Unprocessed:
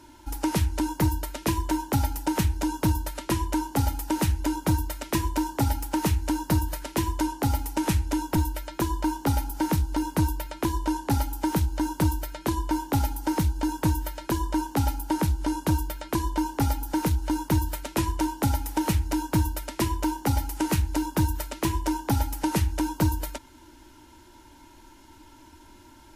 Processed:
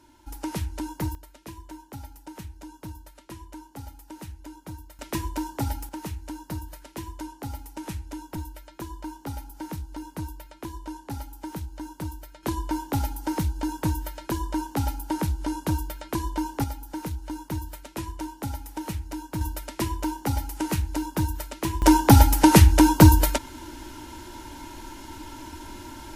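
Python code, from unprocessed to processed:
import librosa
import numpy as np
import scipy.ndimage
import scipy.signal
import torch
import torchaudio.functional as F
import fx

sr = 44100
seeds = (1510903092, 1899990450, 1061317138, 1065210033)

y = fx.gain(x, sr, db=fx.steps((0.0, -6.0), (1.15, -16.0), (4.99, -4.0), (5.89, -10.5), (12.43, -2.0), (16.64, -8.0), (19.41, -2.0), (21.82, 11.0)))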